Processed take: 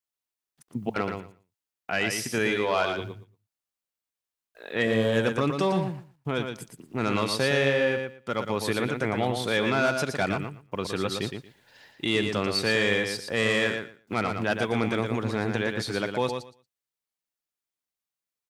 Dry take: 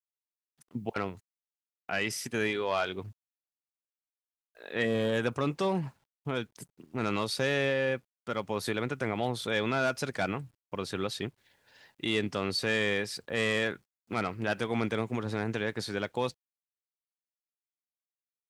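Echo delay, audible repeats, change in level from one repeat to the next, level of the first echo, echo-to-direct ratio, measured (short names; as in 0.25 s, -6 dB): 0.116 s, 2, -16.0 dB, -6.0 dB, -6.0 dB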